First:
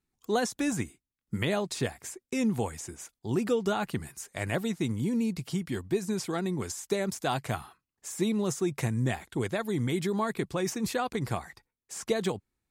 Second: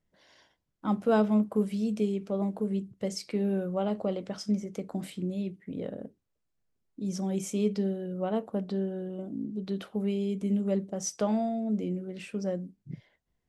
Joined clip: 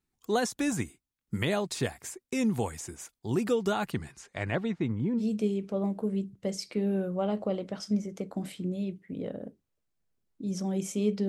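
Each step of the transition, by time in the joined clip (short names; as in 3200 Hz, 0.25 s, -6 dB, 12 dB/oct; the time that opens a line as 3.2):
first
3.91–5.23 LPF 7000 Hz -> 1400 Hz
5.2 switch to second from 1.78 s, crossfade 0.06 s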